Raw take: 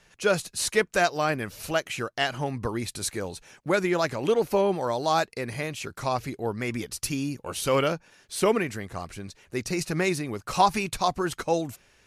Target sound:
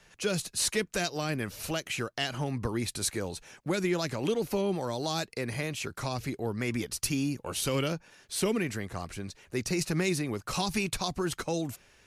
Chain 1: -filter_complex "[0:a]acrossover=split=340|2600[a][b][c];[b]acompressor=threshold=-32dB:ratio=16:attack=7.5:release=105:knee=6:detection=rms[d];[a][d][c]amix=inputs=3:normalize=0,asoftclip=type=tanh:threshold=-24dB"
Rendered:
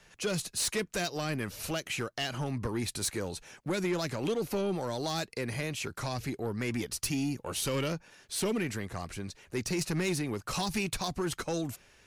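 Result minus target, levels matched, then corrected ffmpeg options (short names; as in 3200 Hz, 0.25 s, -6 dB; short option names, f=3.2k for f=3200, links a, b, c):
soft clip: distortion +18 dB
-filter_complex "[0:a]acrossover=split=340|2600[a][b][c];[b]acompressor=threshold=-32dB:ratio=16:attack=7.5:release=105:knee=6:detection=rms[d];[a][d][c]amix=inputs=3:normalize=0,asoftclip=type=tanh:threshold=-12.5dB"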